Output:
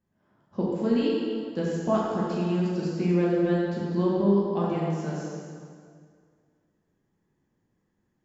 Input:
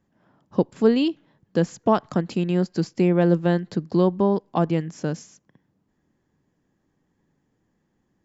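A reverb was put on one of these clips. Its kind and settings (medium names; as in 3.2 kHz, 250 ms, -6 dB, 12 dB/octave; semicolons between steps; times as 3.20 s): plate-style reverb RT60 2.1 s, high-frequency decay 0.8×, DRR -6.5 dB; trim -11.5 dB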